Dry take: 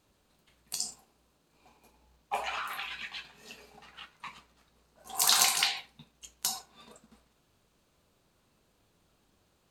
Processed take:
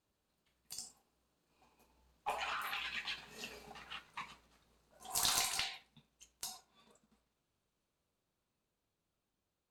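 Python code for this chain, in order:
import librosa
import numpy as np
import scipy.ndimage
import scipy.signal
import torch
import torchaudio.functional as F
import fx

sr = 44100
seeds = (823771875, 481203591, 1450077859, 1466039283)

y = fx.diode_clip(x, sr, knee_db=-19.5)
y = fx.doppler_pass(y, sr, speed_mps=8, closest_m=5.0, pass_at_s=3.51)
y = y * 10.0 ** (1.5 / 20.0)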